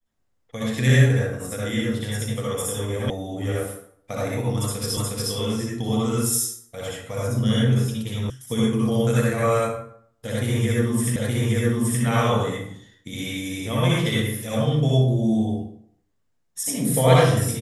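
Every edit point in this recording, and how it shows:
0:03.10: cut off before it has died away
0:04.97: the same again, the last 0.36 s
0:08.30: cut off before it has died away
0:11.16: the same again, the last 0.87 s

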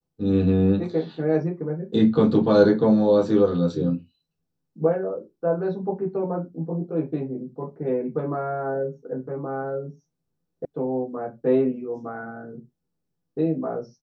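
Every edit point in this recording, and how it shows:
0:10.65: cut off before it has died away

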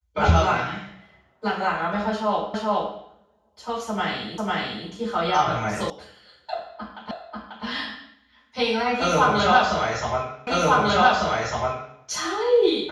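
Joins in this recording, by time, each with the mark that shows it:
0:02.54: the same again, the last 0.42 s
0:04.38: the same again, the last 0.5 s
0:05.90: cut off before it has died away
0:07.11: the same again, the last 0.54 s
0:10.47: the same again, the last 1.5 s

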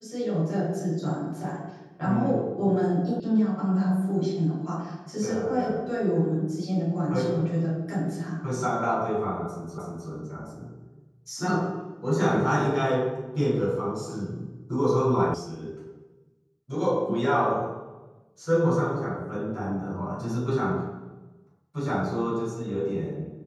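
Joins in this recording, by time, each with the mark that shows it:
0:03.20: cut off before it has died away
0:09.78: the same again, the last 0.31 s
0:15.34: cut off before it has died away

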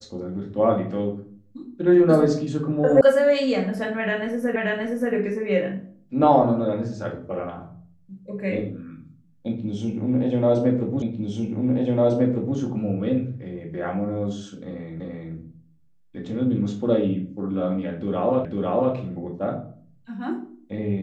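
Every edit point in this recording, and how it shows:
0:03.01: cut off before it has died away
0:04.56: the same again, the last 0.58 s
0:11.02: the same again, the last 1.55 s
0:15.00: the same again, the last 0.34 s
0:18.45: the same again, the last 0.5 s

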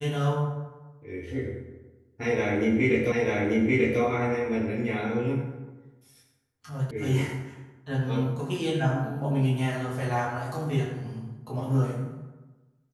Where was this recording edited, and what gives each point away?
0:03.12: the same again, the last 0.89 s
0:06.91: cut off before it has died away

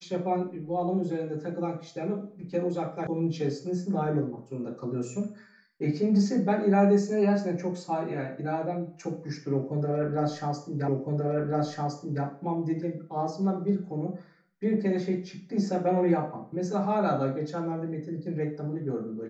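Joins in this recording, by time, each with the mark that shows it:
0:03.07: cut off before it has died away
0:10.88: the same again, the last 1.36 s

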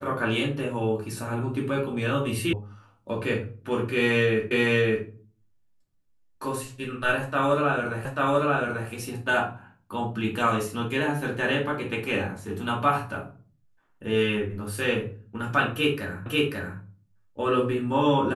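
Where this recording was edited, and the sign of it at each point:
0:02.53: cut off before it has died away
0:04.51: the same again, the last 0.56 s
0:08.05: the same again, the last 0.84 s
0:16.26: the same again, the last 0.54 s

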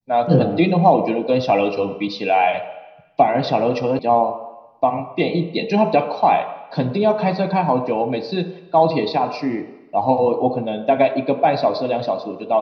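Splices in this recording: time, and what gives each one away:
0:03.99: cut off before it has died away

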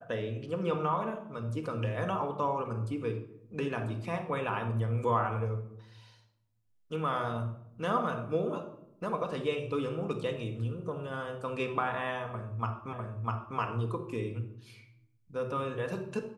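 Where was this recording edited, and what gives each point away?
0:12.93: the same again, the last 0.65 s

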